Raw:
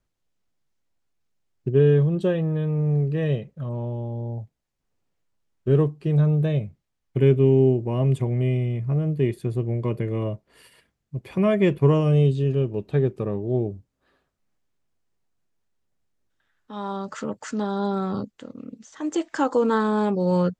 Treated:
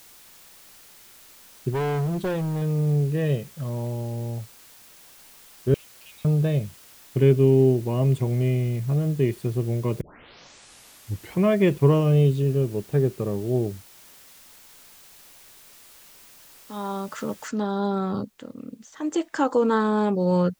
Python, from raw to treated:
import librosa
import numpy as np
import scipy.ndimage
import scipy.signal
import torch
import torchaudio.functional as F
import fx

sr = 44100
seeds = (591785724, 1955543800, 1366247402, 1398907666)

y = fx.overload_stage(x, sr, gain_db=23.0, at=(1.71, 2.62))
y = fx.brickwall_highpass(y, sr, low_hz=2100.0, at=(5.74, 6.25))
y = fx.high_shelf(y, sr, hz=3100.0, db=-11.0, at=(12.42, 13.42))
y = fx.noise_floor_step(y, sr, seeds[0], at_s=17.48, before_db=-50, after_db=-69, tilt_db=0.0)
y = fx.edit(y, sr, fx.tape_start(start_s=10.01, length_s=1.43), tone=tone)